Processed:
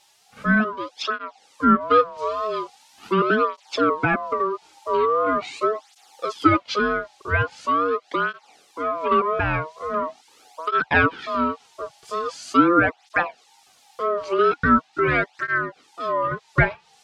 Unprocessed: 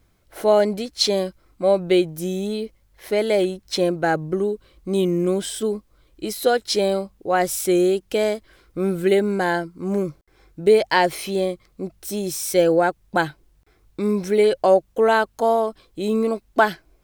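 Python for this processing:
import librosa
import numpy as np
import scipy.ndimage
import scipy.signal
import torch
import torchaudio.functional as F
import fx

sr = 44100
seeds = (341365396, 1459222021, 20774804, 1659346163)

y = fx.dynamic_eq(x, sr, hz=1400.0, q=0.71, threshold_db=-32.0, ratio=4.0, max_db=3)
y = y * np.sin(2.0 * np.pi * 820.0 * np.arange(len(y)) / sr)
y = fx.wow_flutter(y, sr, seeds[0], rate_hz=2.1, depth_cents=92.0)
y = fx.dmg_noise_colour(y, sr, seeds[1], colour='violet', level_db=-39.0)
y = scipy.signal.sosfilt(scipy.signal.butter(2, 4300.0, 'lowpass', fs=sr, output='sos'), y)
y = fx.env_lowpass_down(y, sr, base_hz=2600.0, full_db=-19.0)
y = fx.rider(y, sr, range_db=5, speed_s=2.0)
y = fx.env_lowpass_down(y, sr, base_hz=2600.0, full_db=-18.5, at=(1.05, 1.81))
y = fx.high_shelf(y, sr, hz=3100.0, db=9.5, at=(14.17, 15.58))
y = fx.flanger_cancel(y, sr, hz=0.42, depth_ms=4.3)
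y = F.gain(torch.from_numpy(y), 2.5).numpy()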